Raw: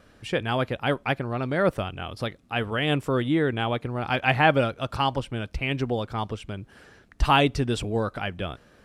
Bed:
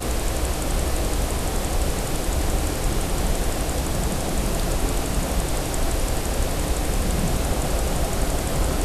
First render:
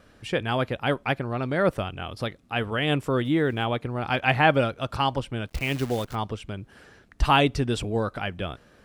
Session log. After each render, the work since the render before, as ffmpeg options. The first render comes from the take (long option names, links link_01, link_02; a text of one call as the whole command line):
ffmpeg -i in.wav -filter_complex "[0:a]asplit=3[link_01][link_02][link_03];[link_01]afade=type=out:start_time=3.24:duration=0.02[link_04];[link_02]aeval=exprs='val(0)*gte(abs(val(0)),0.00398)':channel_layout=same,afade=type=in:start_time=3.24:duration=0.02,afade=type=out:start_time=3.64:duration=0.02[link_05];[link_03]afade=type=in:start_time=3.64:duration=0.02[link_06];[link_04][link_05][link_06]amix=inputs=3:normalize=0,asplit=3[link_07][link_08][link_09];[link_07]afade=type=out:start_time=5.47:duration=0.02[link_10];[link_08]acrusher=bits=7:dc=4:mix=0:aa=0.000001,afade=type=in:start_time=5.47:duration=0.02,afade=type=out:start_time=6.14:duration=0.02[link_11];[link_09]afade=type=in:start_time=6.14:duration=0.02[link_12];[link_10][link_11][link_12]amix=inputs=3:normalize=0" out.wav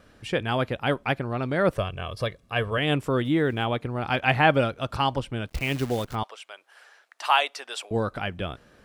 ffmpeg -i in.wav -filter_complex "[0:a]asettb=1/sr,asplit=3[link_01][link_02][link_03];[link_01]atrim=end=1.764[link_04];[link_02]atrim=start=1.76:end=2.78,asetpts=PTS-STARTPTS,afade=type=in:duration=0.004:curve=qsin,afade=type=out:start_time=1.016:duration=0.004:curve=qsin,aecho=1:1:1.8:0.6,atrim=end_sample=44982[link_05];[link_03]atrim=start=2.776[link_06];[link_04][link_05]acrossfade=duration=0.004:curve1=hsin:curve2=qsin[link_07];[link_07][link_06]acrossfade=duration=0.004:curve1=qsin:curve2=hsin,asettb=1/sr,asplit=3[link_08][link_09][link_10];[link_08]atrim=end=6.234[link_11];[link_09]atrim=start=6.23:end=7.91,asetpts=PTS-STARTPTS,afade=type=in:duration=0.004:curve=qsin,afade=type=out:start_time=1.676:duration=0.004:curve=qsin,highpass=frequency=650:width=0.5412,highpass=frequency=650:width=1.3066[link_12];[link_10]atrim=start=7.906[link_13];[link_11][link_12]acrossfade=duration=0.004:curve1=hsin:curve2=qsin[link_14];[link_14][link_13]acrossfade=duration=0.004:curve1=qsin:curve2=hsin" out.wav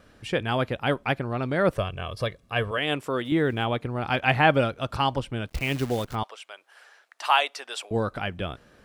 ffmpeg -i in.wav -filter_complex "[0:a]asettb=1/sr,asplit=3[link_01][link_02][link_03];[link_01]atrim=end=2.714[link_04];[link_02]atrim=start=2.71:end=3.32,asetpts=PTS-STARTPTS,afade=type=in:duration=0.004:curve=qsin,afade=type=out:start_time=0.606:duration=0.004:curve=qsin,highpass=frequency=390:poles=1[link_05];[link_03]atrim=start=3.316[link_06];[link_04][link_05]acrossfade=duration=0.004:curve1=hsin:curve2=qsin[link_07];[link_07][link_06]acrossfade=duration=0.004:curve1=qsin:curve2=hsin" out.wav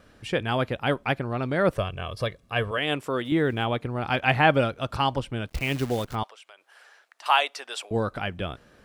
ffmpeg -i in.wav -filter_complex "[0:a]asettb=1/sr,asplit=3[link_01][link_02][link_03];[link_01]atrim=end=6.274[link_04];[link_02]atrim=start=6.27:end=7.26,asetpts=PTS-STARTPTS,afade=type=in:duration=0.004:curve=qsin,afade=type=out:start_time=0.986:duration=0.004:curve=qsin,acompressor=threshold=-48dB:ratio=2.5:attack=3.2:release=140:knee=1:detection=peak[link_05];[link_03]atrim=start=7.256[link_06];[link_04][link_05]acrossfade=duration=0.004:curve1=hsin:curve2=qsin[link_07];[link_07][link_06]acrossfade=duration=0.004:curve1=qsin:curve2=hsin" out.wav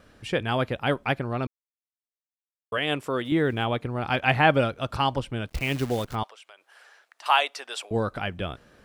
ffmpeg -i in.wav -filter_complex "[0:a]asplit=3[link_01][link_02][link_03];[link_01]atrim=end=1.47,asetpts=PTS-STARTPTS,afade=type=out:start_time=1.466:duration=0.004:curve=hsin[link_04];[link_02]atrim=start=1.47:end=2.72,asetpts=PTS-STARTPTS,volume=0[link_05];[link_03]atrim=start=2.72,asetpts=PTS-STARTPTS,afade=type=in:duration=0.004:curve=hsin[link_06];[link_04][link_05][link_06]concat=n=3:v=0:a=1" out.wav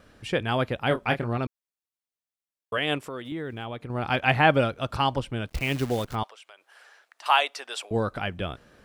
ffmpeg -i in.wav -filter_complex "[0:a]asettb=1/sr,asplit=3[link_01][link_02][link_03];[link_01]atrim=end=0.884[link_04];[link_02]atrim=start=0.88:end=1.38,asetpts=PTS-STARTPTS,afade=type=in:duration=0.004:curve=qsin,afade=type=out:start_time=0.496:duration=0.004:curve=qsin,asplit=2[link_05][link_06];[link_06]adelay=26,volume=-7dB[link_07];[link_05][link_07]amix=inputs=2:normalize=0,atrim=end_sample=22050[link_08];[link_03]atrim=start=1.376[link_09];[link_04][link_08]acrossfade=duration=0.004:curve1=hsin:curve2=qsin[link_10];[link_10][link_09]acrossfade=duration=0.004:curve1=qsin:curve2=hsin,asettb=1/sr,asplit=3[link_11][link_12][link_13];[link_11]atrim=end=2.984[link_14];[link_12]atrim=start=2.98:end=3.9,asetpts=PTS-STARTPTS,afade=type=in:duration=0.004:curve=qsin,afade=type=out:start_time=0.916:duration=0.004:curve=qsin,acompressor=threshold=-38dB:ratio=2:attack=3.2:release=140:knee=1:detection=peak[link_15];[link_13]atrim=start=3.896[link_16];[link_14][link_15]acrossfade=duration=0.004:curve1=hsin:curve2=qsin[link_17];[link_17][link_16]acrossfade=duration=0.004:curve1=qsin:curve2=hsin" out.wav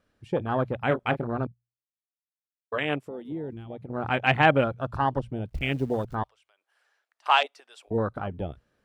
ffmpeg -i in.wav -af "bandreject=frequency=60:width_type=h:width=6,bandreject=frequency=120:width_type=h:width=6,afwtdn=0.0355" out.wav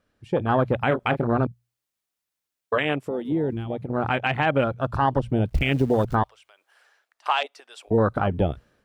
ffmpeg -i in.wav -af "dynaudnorm=framelen=180:gausssize=5:maxgain=11.5dB,alimiter=limit=-11dB:level=0:latency=1:release=136" out.wav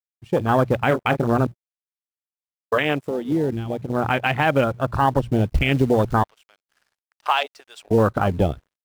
ffmpeg -i in.wav -filter_complex "[0:a]asplit=2[link_01][link_02];[link_02]acrusher=bits=4:mode=log:mix=0:aa=0.000001,volume=-8dB[link_03];[link_01][link_03]amix=inputs=2:normalize=0,aeval=exprs='sgn(val(0))*max(abs(val(0))-0.002,0)':channel_layout=same" out.wav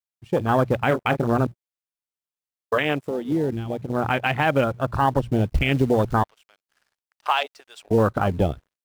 ffmpeg -i in.wav -af "volume=-1.5dB" out.wav